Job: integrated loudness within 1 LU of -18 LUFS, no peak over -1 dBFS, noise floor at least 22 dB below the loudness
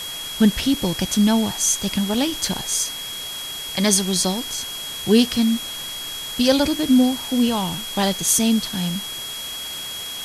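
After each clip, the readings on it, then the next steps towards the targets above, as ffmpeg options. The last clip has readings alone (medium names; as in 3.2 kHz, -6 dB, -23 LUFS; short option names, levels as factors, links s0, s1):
steady tone 3.3 kHz; tone level -30 dBFS; noise floor -31 dBFS; noise floor target -43 dBFS; loudness -20.5 LUFS; peak level -4.0 dBFS; loudness target -18.0 LUFS
-> -af "bandreject=f=3300:w=30"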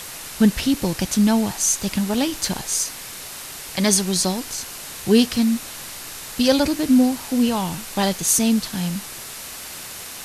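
steady tone not found; noise floor -35 dBFS; noise floor target -42 dBFS
-> -af "afftdn=nr=7:nf=-35"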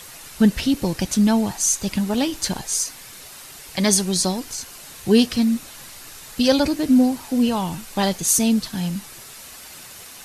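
noise floor -41 dBFS; noise floor target -43 dBFS
-> -af "afftdn=nr=6:nf=-41"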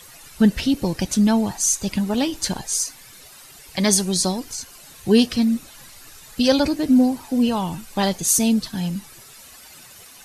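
noise floor -45 dBFS; loudness -20.0 LUFS; peak level -3.5 dBFS; loudness target -18.0 LUFS
-> -af "volume=1.26"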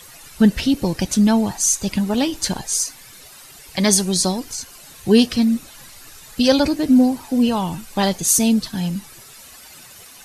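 loudness -18.0 LUFS; peak level -1.5 dBFS; noise floor -43 dBFS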